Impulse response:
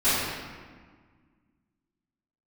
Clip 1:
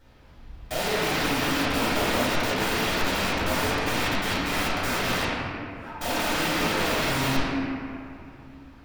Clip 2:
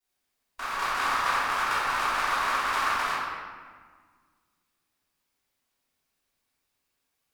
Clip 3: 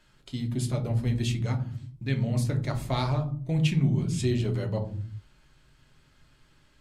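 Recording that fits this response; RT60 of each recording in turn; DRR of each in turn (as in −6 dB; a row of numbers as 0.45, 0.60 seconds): 2; 2.6, 1.6, 0.50 seconds; −10.5, −17.5, 4.0 decibels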